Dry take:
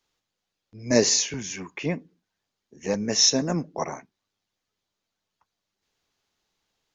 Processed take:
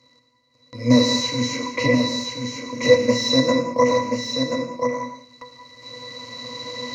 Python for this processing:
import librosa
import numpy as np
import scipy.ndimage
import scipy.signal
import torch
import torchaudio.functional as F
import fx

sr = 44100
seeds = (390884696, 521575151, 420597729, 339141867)

p1 = fx.bin_compress(x, sr, power=0.6)
p2 = fx.recorder_agc(p1, sr, target_db=-11.5, rise_db_per_s=6.0, max_gain_db=30)
p3 = fx.tilt_eq(p2, sr, slope=4.0)
p4 = fx.level_steps(p3, sr, step_db=23)
p5 = p3 + (p4 * librosa.db_to_amplitude(-0.5))
p6 = fx.leveller(p5, sr, passes=3)
p7 = fx.quant_dither(p6, sr, seeds[0], bits=8, dither='none')
p8 = fx.octave_resonator(p7, sr, note='B', decay_s=0.18)
p9 = p8 + fx.echo_single(p8, sr, ms=1032, db=-5.5, dry=0)
p10 = fx.rev_gated(p9, sr, seeds[1], gate_ms=230, shape='flat', drr_db=6.0)
y = p10 * librosa.db_to_amplitude(7.0)